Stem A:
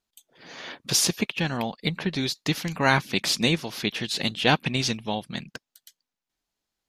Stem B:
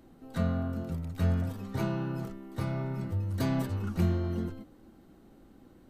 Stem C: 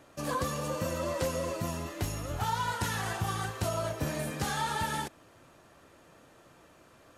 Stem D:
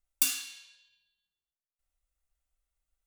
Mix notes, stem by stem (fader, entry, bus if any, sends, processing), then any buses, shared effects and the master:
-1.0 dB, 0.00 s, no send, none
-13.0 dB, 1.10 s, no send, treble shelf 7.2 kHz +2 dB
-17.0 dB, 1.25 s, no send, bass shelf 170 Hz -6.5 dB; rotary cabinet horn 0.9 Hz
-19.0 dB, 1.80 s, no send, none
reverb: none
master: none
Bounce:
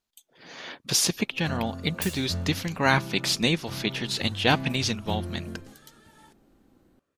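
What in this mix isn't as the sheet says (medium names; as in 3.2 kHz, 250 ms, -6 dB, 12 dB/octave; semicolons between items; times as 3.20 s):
stem B -13.0 dB -> -5.0 dB; stem D -19.0 dB -> -7.5 dB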